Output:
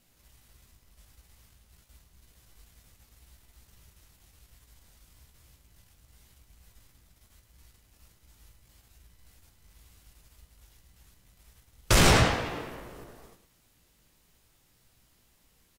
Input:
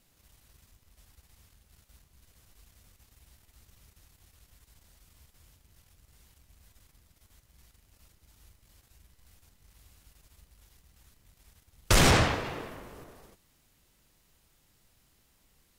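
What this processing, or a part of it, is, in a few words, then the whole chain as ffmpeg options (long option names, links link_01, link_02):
slapback doubling: -filter_complex "[0:a]asplit=3[link_01][link_02][link_03];[link_02]adelay=17,volume=-6dB[link_04];[link_03]adelay=108,volume=-9dB[link_05];[link_01][link_04][link_05]amix=inputs=3:normalize=0"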